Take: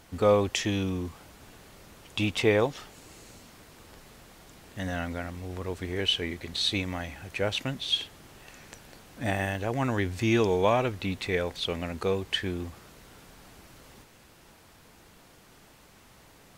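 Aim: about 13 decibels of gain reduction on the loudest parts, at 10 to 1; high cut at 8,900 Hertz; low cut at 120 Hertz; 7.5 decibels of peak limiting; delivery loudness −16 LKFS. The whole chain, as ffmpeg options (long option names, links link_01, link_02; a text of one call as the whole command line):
ffmpeg -i in.wav -af "highpass=120,lowpass=8900,acompressor=threshold=-30dB:ratio=10,volume=21.5dB,alimiter=limit=-4dB:level=0:latency=1" out.wav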